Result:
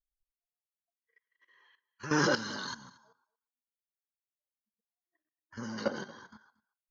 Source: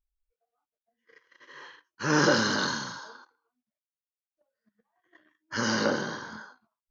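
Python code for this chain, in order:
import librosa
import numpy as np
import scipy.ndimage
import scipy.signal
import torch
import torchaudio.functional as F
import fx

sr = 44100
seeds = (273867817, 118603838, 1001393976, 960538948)

y = fx.bin_expand(x, sr, power=1.5)
y = fx.peak_eq(y, sr, hz=3500.0, db=-12.5, octaves=2.7, at=(2.73, 5.77), fade=0.02)
y = fx.level_steps(y, sr, step_db=13)
y = y + 10.0 ** (-22.5 / 20.0) * np.pad(y, (int(231 * sr / 1000.0), 0))[:len(y)]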